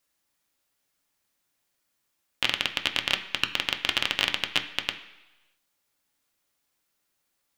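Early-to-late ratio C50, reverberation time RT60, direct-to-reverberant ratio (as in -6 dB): 11.5 dB, 1.1 s, 4.5 dB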